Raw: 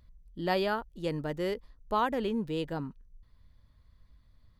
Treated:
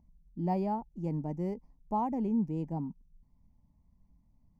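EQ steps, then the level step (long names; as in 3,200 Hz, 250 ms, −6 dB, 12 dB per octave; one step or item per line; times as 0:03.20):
drawn EQ curve 120 Hz 0 dB, 170 Hz +12 dB, 270 Hz +8 dB, 510 Hz −5 dB, 850 Hz +8 dB, 1,500 Hz −24 dB, 2,200 Hz −8 dB, 3,700 Hz −28 dB, 5,900 Hz −1 dB, 8,500 Hz −13 dB
−6.0 dB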